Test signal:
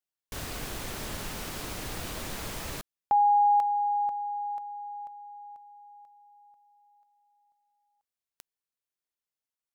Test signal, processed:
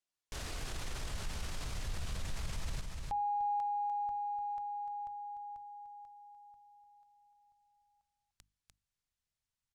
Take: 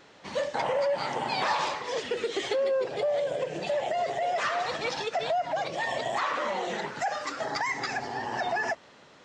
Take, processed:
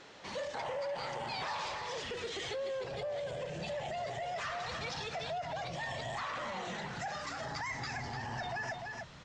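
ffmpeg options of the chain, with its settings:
-af "aecho=1:1:297:0.282,asubboost=boost=11.5:cutoff=110,acompressor=threshold=0.0112:ratio=2.5:attack=0.31:release=23:knee=6:detection=rms,lowpass=7800,highshelf=f=4600:g=4.5,bandreject=f=50:t=h:w=6,bandreject=f=100:t=h:w=6,bandreject=f=150:t=h:w=6,bandreject=f=200:t=h:w=6,bandreject=f=250:t=h:w=6,bandreject=f=300:t=h:w=6"

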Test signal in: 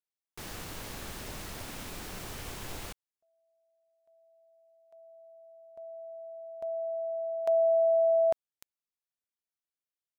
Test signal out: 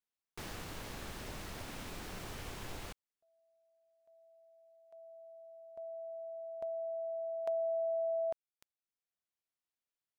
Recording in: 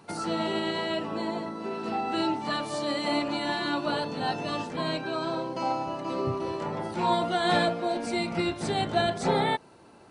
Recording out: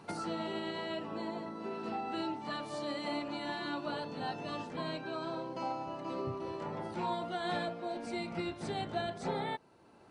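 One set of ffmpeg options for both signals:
-af "acompressor=threshold=0.00794:ratio=2:attack=68:release=895:detection=rms,highshelf=f=6200:g=-6.5"

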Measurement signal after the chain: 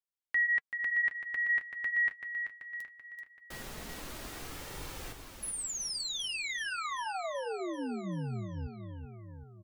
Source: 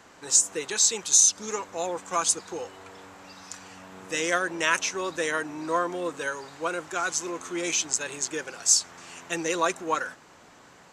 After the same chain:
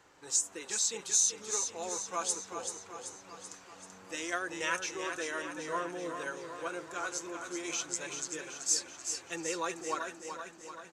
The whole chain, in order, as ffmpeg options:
-af "aecho=1:1:384|768|1152|1536|1920|2304|2688:0.447|0.259|0.15|0.0872|0.0505|0.0293|0.017,flanger=delay=2.2:depth=7.1:regen=-52:speed=0.21:shape=sinusoidal,volume=0.531"

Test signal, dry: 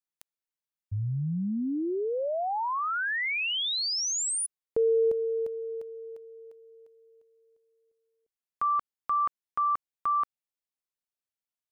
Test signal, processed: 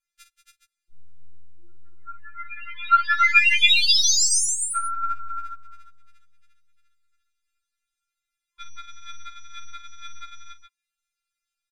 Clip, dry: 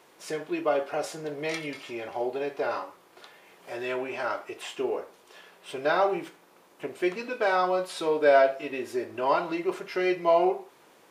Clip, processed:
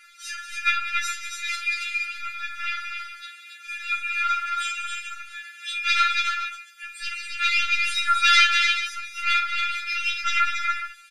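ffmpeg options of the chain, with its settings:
-filter_complex "[0:a]lowpass=9600,highshelf=f=2300:g=-7,aeval=exprs='0.335*(cos(1*acos(clip(val(0)/0.335,-1,1)))-cos(1*PI/2))+0.0335*(cos(4*acos(clip(val(0)/0.335,-1,1)))-cos(4*PI/2))+0.168*(cos(7*acos(clip(val(0)/0.335,-1,1)))-cos(7*PI/2))+0.015*(cos(8*acos(clip(val(0)/0.335,-1,1)))-cos(8*PI/2))':c=same,aecho=1:1:5:0.69,acrossover=split=1200[s0][s1];[s0]acompressor=threshold=0.00891:ratio=8:attack=0.26:release=547:detection=rms[s2];[s2][s1]amix=inputs=2:normalize=0,afftfilt=real='re*(1-between(b*sr/4096,280,1100))':imag='im*(1-between(b*sr/4096,280,1100))':win_size=4096:overlap=0.75,asplit=2[s3][s4];[s4]aecho=0:1:51|185|278|319|418:0.316|0.299|0.596|0.112|0.266[s5];[s3][s5]amix=inputs=2:normalize=0,afftfilt=real='re*4*eq(mod(b,16),0)':imag='im*4*eq(mod(b,16),0)':win_size=2048:overlap=0.75,volume=2.37"

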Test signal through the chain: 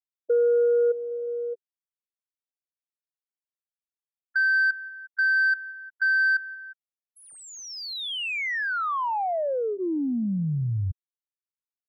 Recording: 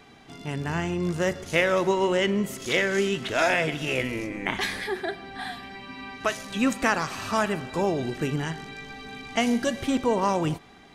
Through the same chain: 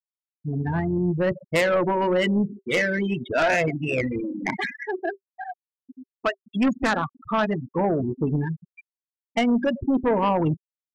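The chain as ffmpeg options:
-filter_complex "[0:a]asplit=2[s0][s1];[s1]aecho=0:1:178|356|534|712:0.0794|0.0429|0.0232|0.0125[s2];[s0][s2]amix=inputs=2:normalize=0,afftfilt=real='re*gte(hypot(re,im),0.1)':imag='im*gte(hypot(re,im),0.1)':win_size=1024:overlap=0.75,bandreject=f=390:w=12,adynamicsmooth=sensitivity=1:basefreq=2700,aeval=exprs='0.316*(cos(1*acos(clip(val(0)/0.316,-1,1)))-cos(1*PI/2))+0.0891*(cos(5*acos(clip(val(0)/0.316,-1,1)))-cos(5*PI/2))':c=same,volume=0.794"

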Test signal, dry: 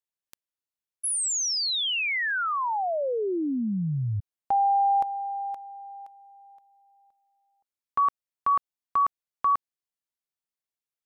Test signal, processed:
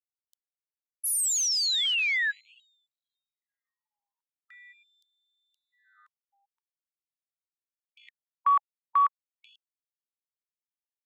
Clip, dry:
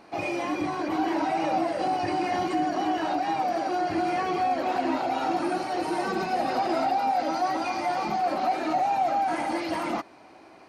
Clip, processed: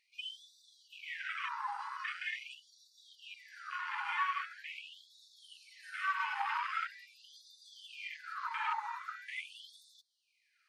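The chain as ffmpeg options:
-af "afwtdn=0.0158,acontrast=68,afftfilt=real='re*gte(b*sr/1024,810*pow(3500/810,0.5+0.5*sin(2*PI*0.43*pts/sr)))':imag='im*gte(b*sr/1024,810*pow(3500/810,0.5+0.5*sin(2*PI*0.43*pts/sr)))':win_size=1024:overlap=0.75,volume=0.531"

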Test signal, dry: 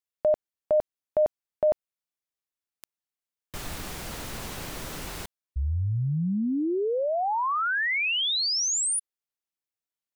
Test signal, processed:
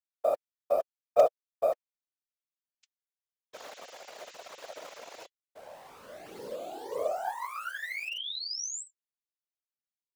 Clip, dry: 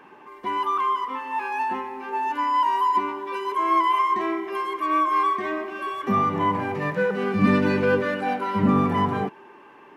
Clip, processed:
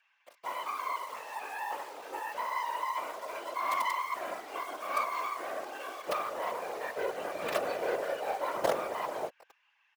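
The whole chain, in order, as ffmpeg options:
-filter_complex "[0:a]aresample=16000,asoftclip=type=hard:threshold=0.158,aresample=44100,aeval=exprs='val(0)+0.00251*(sin(2*PI*50*n/s)+sin(2*PI*2*50*n/s)/2+sin(2*PI*3*50*n/s)/3+sin(2*PI*4*50*n/s)/4+sin(2*PI*5*50*n/s)/5)':c=same,flanger=delay=3.6:depth=2:regen=57:speed=0.28:shape=triangular,acrossover=split=1900[s0][s1];[s0]acrusher=bits=4:dc=4:mix=0:aa=0.000001[s2];[s2][s1]amix=inputs=2:normalize=0,highpass=f=580:t=q:w=5,afftfilt=real='hypot(re,im)*cos(2*PI*random(0))':imag='hypot(re,im)*sin(2*PI*random(1))':win_size=512:overlap=0.75"

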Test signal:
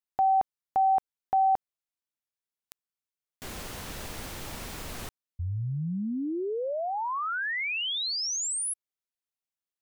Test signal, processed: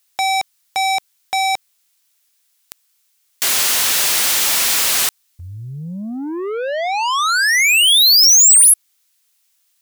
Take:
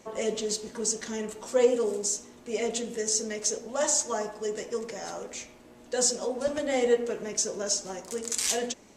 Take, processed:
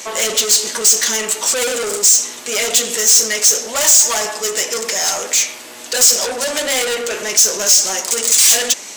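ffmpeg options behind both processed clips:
-filter_complex "[0:a]asplit=2[s0][s1];[s1]highpass=f=720:p=1,volume=28.2,asoftclip=type=tanh:threshold=0.316[s2];[s0][s2]amix=inputs=2:normalize=0,lowpass=f=4100:p=1,volume=0.501,crystalizer=i=9:c=0,volume=0.473"

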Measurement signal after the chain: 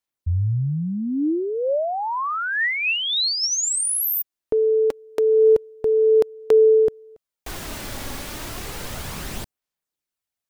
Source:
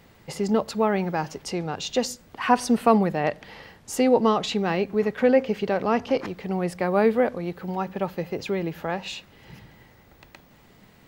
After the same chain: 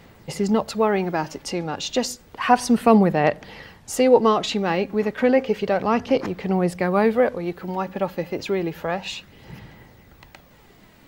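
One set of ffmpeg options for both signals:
-af "aphaser=in_gain=1:out_gain=1:delay=3.6:decay=0.31:speed=0.31:type=sinusoidal,volume=1.33"

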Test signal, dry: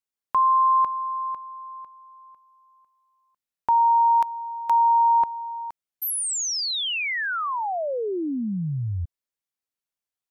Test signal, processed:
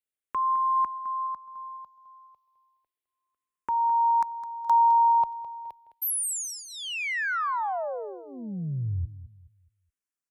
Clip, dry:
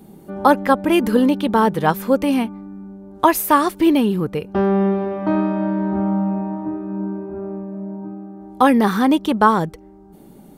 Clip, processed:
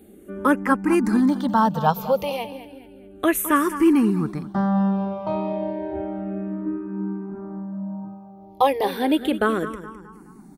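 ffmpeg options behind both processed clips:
-filter_complex "[0:a]aecho=1:1:210|420|630|840:0.211|0.0803|0.0305|0.0116,asplit=2[s0][s1];[s1]afreqshift=-0.32[s2];[s0][s2]amix=inputs=2:normalize=1,volume=0.891"

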